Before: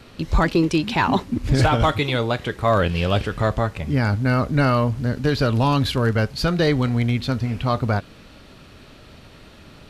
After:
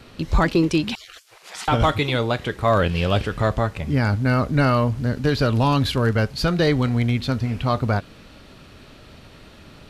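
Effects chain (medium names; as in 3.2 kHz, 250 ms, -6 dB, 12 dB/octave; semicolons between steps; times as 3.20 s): 0.95–1.68 s: spectral gate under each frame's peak -30 dB weak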